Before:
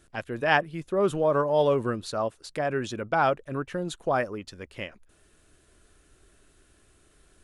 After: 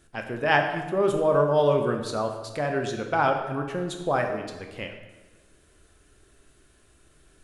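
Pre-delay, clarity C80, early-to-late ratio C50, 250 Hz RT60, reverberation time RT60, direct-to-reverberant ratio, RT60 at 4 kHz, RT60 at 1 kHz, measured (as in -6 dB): 13 ms, 8.0 dB, 6.5 dB, 1.4 s, 1.3 s, 3.5 dB, 0.95 s, 1.2 s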